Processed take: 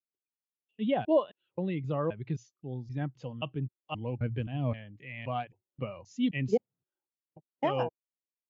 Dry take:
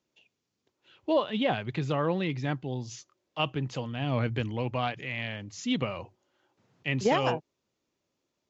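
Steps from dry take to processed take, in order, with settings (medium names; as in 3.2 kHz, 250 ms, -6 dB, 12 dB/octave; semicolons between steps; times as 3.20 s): slices played last to first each 263 ms, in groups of 3; spectral contrast expander 1.5:1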